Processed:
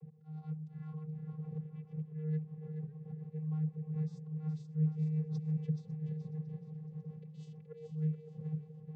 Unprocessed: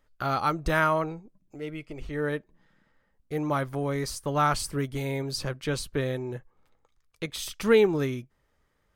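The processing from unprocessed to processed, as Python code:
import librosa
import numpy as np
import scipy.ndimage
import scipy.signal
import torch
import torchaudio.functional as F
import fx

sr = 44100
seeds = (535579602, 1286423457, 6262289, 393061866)

p1 = fx.dmg_wind(x, sr, seeds[0], corner_hz=410.0, level_db=-35.0)
p2 = fx.backlash(p1, sr, play_db=-21.0)
p3 = p1 + F.gain(torch.from_numpy(p2), -11.5).numpy()
p4 = fx.auto_swell(p3, sr, attack_ms=314.0)
p5 = fx.rider(p4, sr, range_db=5, speed_s=0.5)
p6 = fx.peak_eq(p5, sr, hz=140.0, db=11.0, octaves=0.4)
p7 = p6 + fx.echo_feedback(p6, sr, ms=425, feedback_pct=39, wet_db=-6.5, dry=0)
p8 = fx.rotary(p7, sr, hz=6.7)
p9 = fx.peak_eq(p8, sr, hz=1300.0, db=-9.0, octaves=0.46)
p10 = fx.vocoder(p9, sr, bands=16, carrier='square', carrier_hz=155.0)
p11 = fx.echo_warbled(p10, sr, ms=551, feedback_pct=59, rate_hz=2.8, cents=188, wet_db=-20.0)
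y = F.gain(torch.from_numpy(p11), -8.0).numpy()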